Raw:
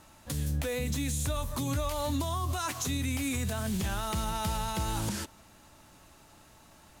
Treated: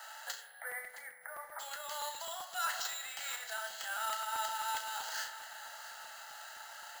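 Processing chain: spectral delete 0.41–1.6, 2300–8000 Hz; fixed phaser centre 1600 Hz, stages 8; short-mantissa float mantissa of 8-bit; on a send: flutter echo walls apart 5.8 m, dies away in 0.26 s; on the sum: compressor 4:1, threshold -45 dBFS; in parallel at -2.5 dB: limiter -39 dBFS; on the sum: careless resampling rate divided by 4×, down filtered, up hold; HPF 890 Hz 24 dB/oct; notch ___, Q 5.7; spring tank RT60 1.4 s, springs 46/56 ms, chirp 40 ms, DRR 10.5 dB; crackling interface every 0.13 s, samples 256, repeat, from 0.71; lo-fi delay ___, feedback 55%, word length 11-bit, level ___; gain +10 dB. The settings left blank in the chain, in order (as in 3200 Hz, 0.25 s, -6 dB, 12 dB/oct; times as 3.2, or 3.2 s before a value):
3600 Hz, 0.666 s, -15 dB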